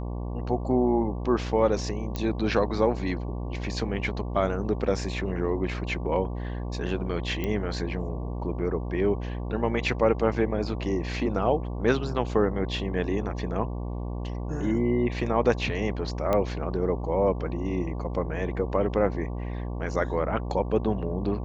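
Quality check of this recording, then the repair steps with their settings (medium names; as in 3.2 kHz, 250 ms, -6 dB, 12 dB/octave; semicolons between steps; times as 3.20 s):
buzz 60 Hz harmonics 19 -32 dBFS
2.16 s: pop -16 dBFS
7.44 s: pop -17 dBFS
16.33 s: pop -13 dBFS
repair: de-click; de-hum 60 Hz, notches 19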